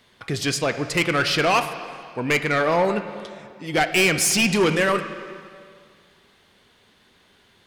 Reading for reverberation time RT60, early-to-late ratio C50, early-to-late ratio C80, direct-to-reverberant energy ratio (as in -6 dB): 2.1 s, 10.0 dB, 11.0 dB, 9.0 dB